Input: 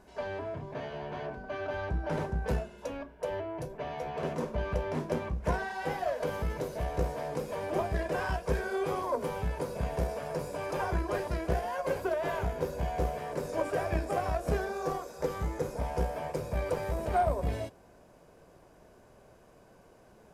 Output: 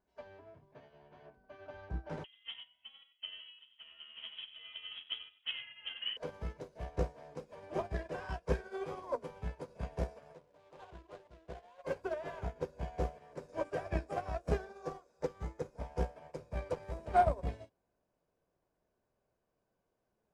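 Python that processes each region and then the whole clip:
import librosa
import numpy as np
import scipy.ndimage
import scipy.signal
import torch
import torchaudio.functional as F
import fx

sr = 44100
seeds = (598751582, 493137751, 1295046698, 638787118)

y = fx.chain(x, sr, fx.highpass(hz=260.0, slope=24),
    fx.echo_single(ms=93, db=-6.0),
    fx.freq_invert(carrier_hz=3600), at=(2.24, 6.17))
y = fx.chain(y, sr, fx.median_filter(points=25),
    fx.low_shelf(hz=440.0, db=-8.0), at=(10.33, 11.84))
y = scipy.signal.sosfilt(scipy.signal.butter(2, 7300.0, 'lowpass', fs=sr, output='sos'), y)
y = fx.upward_expand(y, sr, threshold_db=-41.0, expansion=2.5)
y = F.gain(torch.from_numpy(y), 2.0).numpy()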